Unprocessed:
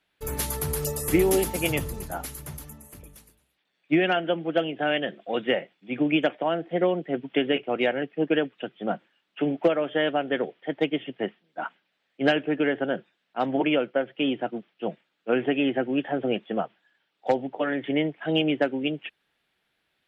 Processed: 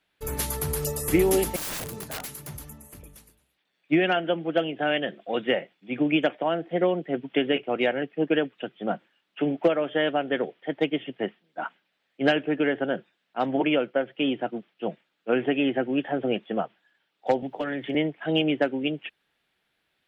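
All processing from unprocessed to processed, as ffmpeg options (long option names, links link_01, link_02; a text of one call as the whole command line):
ffmpeg -i in.wav -filter_complex "[0:a]asettb=1/sr,asplit=3[link_01][link_02][link_03];[link_01]atrim=end=1.564[link_04];[link_02]atrim=start=1.56:end=2.55,asetpts=PTS-STARTPTS,afade=type=in:duration=0.004:curve=qsin,afade=type=out:start_time=0.986:duration=0.004:curve=qsin,highpass=frequency=99:width=0.5412,highpass=frequency=99:width=1.3066,aeval=exprs='(mod(25.1*val(0)+1,2)-1)/25.1':channel_layout=same[link_05];[link_03]atrim=start=2.546[link_06];[link_04][link_05]acrossfade=duration=0.004:curve1=hsin:curve2=qsin[link_07];[link_07][link_06]acrossfade=duration=0.004:curve1=qsin:curve2=hsin,asettb=1/sr,asplit=3[link_08][link_09][link_10];[link_08]atrim=end=17.424[link_11];[link_09]atrim=start=17.42:end=17.95,asetpts=PTS-STARTPTS,afade=type=in:duration=0.004:curve=qsin,afade=type=out:start_time=0.526:duration=0.004:curve=qsin,bass=frequency=250:gain=9,treble=frequency=4000:gain=9,acrossover=split=130|390|4100[link_12][link_13][link_14][link_15];[link_12]acompressor=threshold=-53dB:ratio=3[link_16];[link_13]acompressor=threshold=-37dB:ratio=3[link_17];[link_14]acompressor=threshold=-29dB:ratio=3[link_18];[link_15]acompressor=threshold=-58dB:ratio=3[link_19];[link_16][link_17][link_18][link_19]amix=inputs=4:normalize=0,volume=21dB,asoftclip=hard,volume=-21dB[link_20];[link_10]atrim=start=17.946[link_21];[link_11][link_20]acrossfade=duration=0.004:curve1=hsin:curve2=qsin[link_22];[link_22][link_21]acrossfade=duration=0.004:curve1=qsin:curve2=hsin" out.wav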